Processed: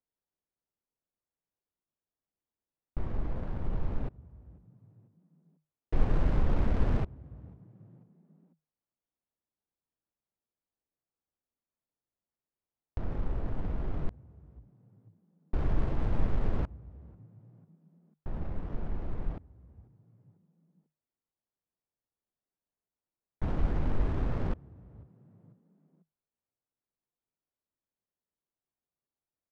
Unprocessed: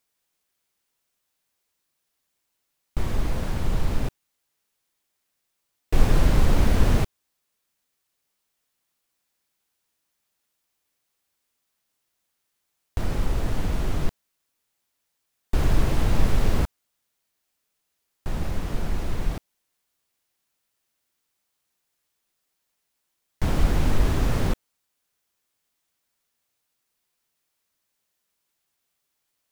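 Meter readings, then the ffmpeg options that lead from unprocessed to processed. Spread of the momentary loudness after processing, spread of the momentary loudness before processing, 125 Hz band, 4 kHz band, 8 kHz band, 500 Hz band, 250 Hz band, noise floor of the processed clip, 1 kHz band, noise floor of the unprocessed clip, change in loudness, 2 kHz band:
22 LU, 11 LU, −8.0 dB, −19.5 dB, below −25 dB, −8.5 dB, −8.0 dB, below −85 dBFS, −9.5 dB, −78 dBFS, −8.5 dB, −13.0 dB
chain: -filter_complex "[0:a]asplit=4[link_01][link_02][link_03][link_04];[link_02]adelay=494,afreqshift=51,volume=-24dB[link_05];[link_03]adelay=988,afreqshift=102,volume=-30.9dB[link_06];[link_04]adelay=1482,afreqshift=153,volume=-37.9dB[link_07];[link_01][link_05][link_06][link_07]amix=inputs=4:normalize=0,adynamicsmooth=sensitivity=2:basefreq=920,volume=-8dB"

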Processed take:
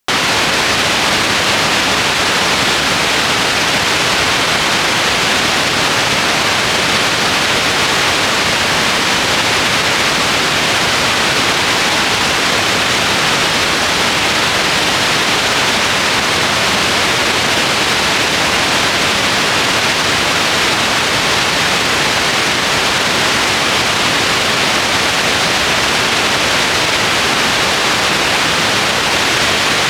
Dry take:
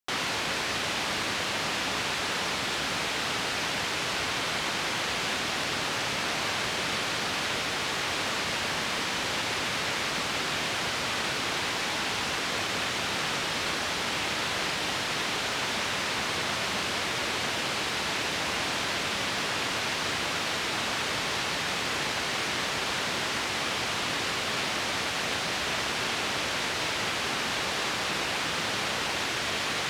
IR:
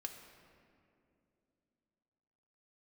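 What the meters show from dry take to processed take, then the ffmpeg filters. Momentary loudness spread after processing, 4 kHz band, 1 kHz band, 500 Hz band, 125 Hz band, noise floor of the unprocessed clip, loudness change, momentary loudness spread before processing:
0 LU, +16.5 dB, +16.5 dB, +16.5 dB, +16.5 dB, −31 dBFS, +16.5 dB, 0 LU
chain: -af "alimiter=level_in=23dB:limit=-1dB:release=50:level=0:latency=1,volume=-3dB"

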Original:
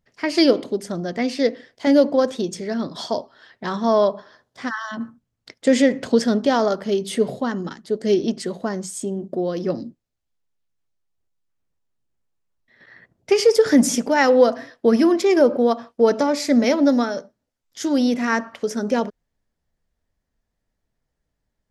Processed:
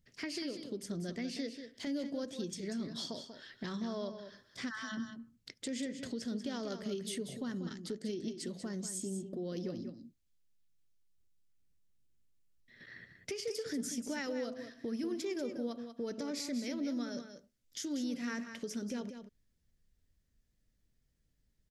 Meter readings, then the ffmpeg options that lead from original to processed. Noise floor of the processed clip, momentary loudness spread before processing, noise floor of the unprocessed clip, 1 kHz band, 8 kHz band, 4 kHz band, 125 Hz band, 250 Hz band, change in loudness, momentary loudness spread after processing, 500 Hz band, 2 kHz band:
−77 dBFS, 12 LU, −78 dBFS, −25.5 dB, −12.5 dB, −14.5 dB, −12.5 dB, −17.5 dB, −19.5 dB, 10 LU, −23.0 dB, −18.0 dB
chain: -af "equalizer=frequency=840:width_type=o:width=1.8:gain=-14.5,acompressor=threshold=-42dB:ratio=2.5,alimiter=level_in=7dB:limit=-24dB:level=0:latency=1:release=163,volume=-7dB,aecho=1:1:189:0.355,volume=1dB"

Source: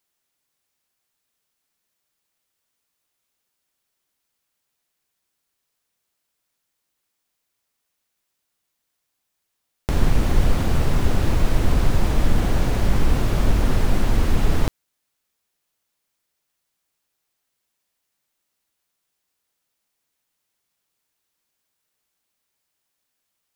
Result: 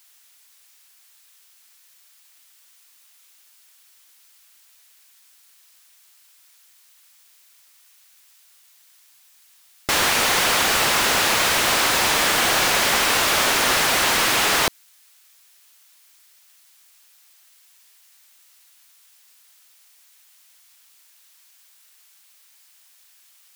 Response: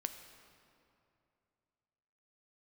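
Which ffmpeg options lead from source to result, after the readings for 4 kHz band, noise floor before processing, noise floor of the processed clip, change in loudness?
+17.0 dB, −78 dBFS, −55 dBFS, +6.0 dB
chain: -filter_complex "[0:a]aderivative,asplit=2[link_01][link_02];[link_02]highpass=frequency=720:poles=1,volume=33dB,asoftclip=type=tanh:threshold=-8.5dB[link_03];[link_01][link_03]amix=inputs=2:normalize=0,lowpass=frequency=1600:poles=1,volume=-6dB,volume=8.5dB"

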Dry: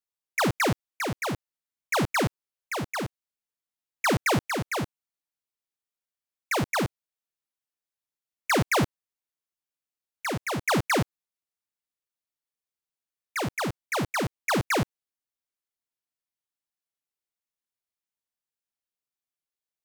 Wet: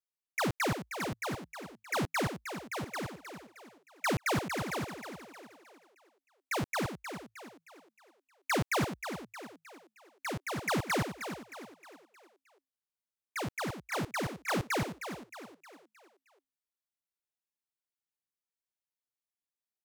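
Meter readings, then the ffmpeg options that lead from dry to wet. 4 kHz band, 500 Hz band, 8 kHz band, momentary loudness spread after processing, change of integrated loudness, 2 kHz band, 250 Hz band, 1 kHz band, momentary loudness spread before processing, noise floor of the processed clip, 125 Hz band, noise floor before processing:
−6.5 dB, −6.5 dB, −6.5 dB, 18 LU, −7.0 dB, −6.5 dB, −6.0 dB, −6.5 dB, 10 LU, below −85 dBFS, −7.0 dB, below −85 dBFS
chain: -filter_complex "[0:a]asplit=6[link_01][link_02][link_03][link_04][link_05][link_06];[link_02]adelay=311,afreqshift=53,volume=-9dB[link_07];[link_03]adelay=622,afreqshift=106,volume=-16.1dB[link_08];[link_04]adelay=933,afreqshift=159,volume=-23.3dB[link_09];[link_05]adelay=1244,afreqshift=212,volume=-30.4dB[link_10];[link_06]adelay=1555,afreqshift=265,volume=-37.5dB[link_11];[link_01][link_07][link_08][link_09][link_10][link_11]amix=inputs=6:normalize=0,volume=-7dB"

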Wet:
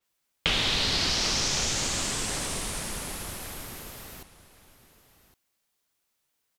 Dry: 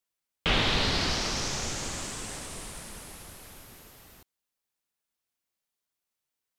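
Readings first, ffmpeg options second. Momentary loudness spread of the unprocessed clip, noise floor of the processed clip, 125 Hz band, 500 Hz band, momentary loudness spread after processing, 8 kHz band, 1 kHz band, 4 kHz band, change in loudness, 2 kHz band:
21 LU, −78 dBFS, −0.5 dB, −0.5 dB, 16 LU, +6.5 dB, −0.5 dB, +4.0 dB, +2.0 dB, +1.0 dB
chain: -filter_complex "[0:a]acrossover=split=2500|5300[link_01][link_02][link_03];[link_01]acompressor=threshold=-40dB:ratio=4[link_04];[link_02]acompressor=threshold=-37dB:ratio=4[link_05];[link_03]acompressor=threshold=-52dB:ratio=4[link_06];[link_04][link_05][link_06]amix=inputs=3:normalize=0,asplit=2[link_07][link_08];[link_08]aecho=0:1:1112:0.15[link_09];[link_07][link_09]amix=inputs=2:normalize=0,adynamicequalizer=threshold=0.00251:dfrequency=6200:dqfactor=0.7:tfrequency=6200:tqfactor=0.7:attack=5:release=100:ratio=0.375:range=4:mode=boostabove:tftype=highshelf,volume=9dB"

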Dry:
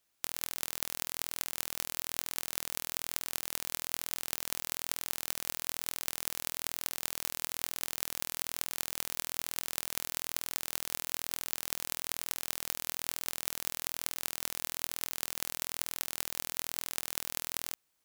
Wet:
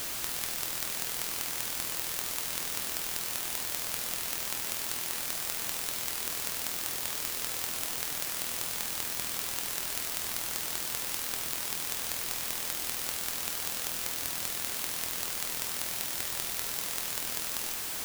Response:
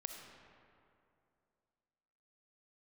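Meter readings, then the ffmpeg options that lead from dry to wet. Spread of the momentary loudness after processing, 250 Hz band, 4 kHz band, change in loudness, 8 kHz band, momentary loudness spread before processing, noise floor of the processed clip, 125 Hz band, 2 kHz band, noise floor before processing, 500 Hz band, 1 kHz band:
0 LU, +4.0 dB, +4.0 dB, +4.0 dB, +4.0 dB, 1 LU, −36 dBFS, +4.0 dB, +4.0 dB, −77 dBFS, +4.0 dB, +4.0 dB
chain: -af "aeval=exprs='val(0)+0.5*0.0422*sgn(val(0))':channel_layout=same,volume=-2dB"

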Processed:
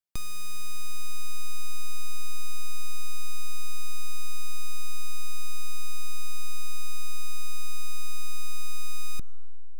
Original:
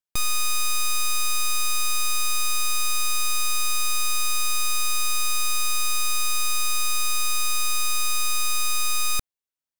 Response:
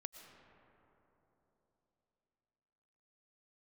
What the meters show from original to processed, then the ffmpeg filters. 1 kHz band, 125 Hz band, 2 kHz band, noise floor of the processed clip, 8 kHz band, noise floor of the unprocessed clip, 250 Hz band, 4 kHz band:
−16.5 dB, +4.0 dB, −16.0 dB, −23 dBFS, −16.5 dB, below −85 dBFS, can't be measured, −16.0 dB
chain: -filter_complex "[0:a]acrossover=split=360[link_01][link_02];[link_02]acompressor=threshold=-46dB:ratio=2[link_03];[link_01][link_03]amix=inputs=2:normalize=0,asplit=2[link_04][link_05];[1:a]atrim=start_sample=2205[link_06];[link_05][link_06]afir=irnorm=-1:irlink=0,volume=-12dB[link_07];[link_04][link_07]amix=inputs=2:normalize=0,volume=-3.5dB"

